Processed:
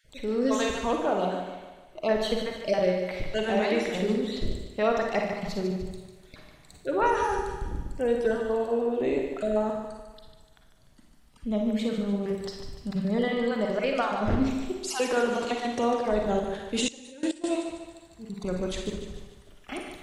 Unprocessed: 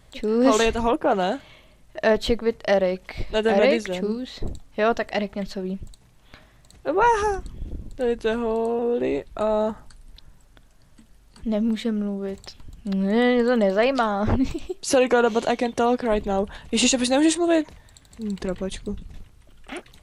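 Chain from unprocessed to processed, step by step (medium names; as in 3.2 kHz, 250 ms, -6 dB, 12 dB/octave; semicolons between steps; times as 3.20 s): random holes in the spectrogram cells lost 23%; gain riding within 4 dB 0.5 s; thinning echo 148 ms, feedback 48%, high-pass 170 Hz, level -7.5 dB; Schroeder reverb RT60 0.52 s, DRR 3 dB; 16.88–17.44 s: level held to a coarse grid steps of 20 dB; trim -5.5 dB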